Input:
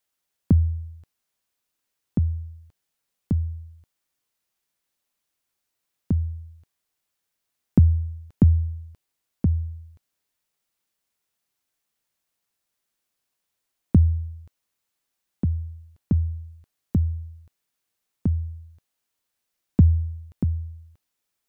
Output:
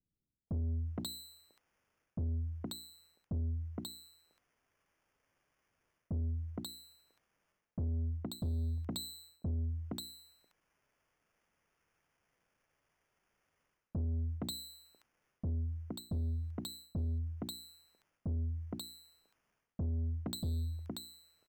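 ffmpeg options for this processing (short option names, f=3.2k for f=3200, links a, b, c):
-filter_complex "[0:a]acrusher=samples=11:mix=1:aa=0.000001,acrossover=split=280|860[a][b][c];[b]adelay=470[d];[c]adelay=540[e];[a][d][e]amix=inputs=3:normalize=0,areverse,acompressor=threshold=-27dB:ratio=8,areverse,bandreject=f=60:t=h:w=6,bandreject=f=120:t=h:w=6,bandreject=f=180:t=h:w=6,bandreject=f=240:t=h:w=6,bandreject=f=300:t=h:w=6,bandreject=f=360:t=h:w=6,asoftclip=type=tanh:threshold=-33.5dB,volume=1dB"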